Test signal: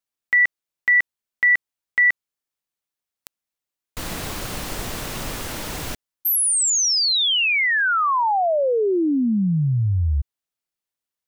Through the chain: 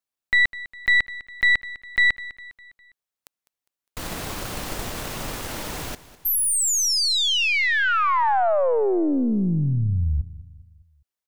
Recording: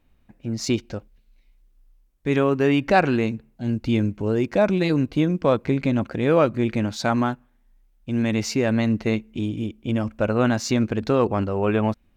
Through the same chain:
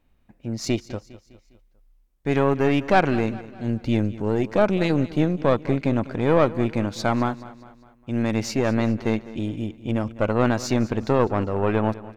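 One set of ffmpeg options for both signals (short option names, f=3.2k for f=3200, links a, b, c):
-af "equalizer=f=750:t=o:w=1.9:g=2,aeval=exprs='(tanh(3.16*val(0)+0.7)-tanh(0.7))/3.16':c=same,aecho=1:1:203|406|609|812:0.133|0.064|0.0307|0.0147,volume=1.5dB"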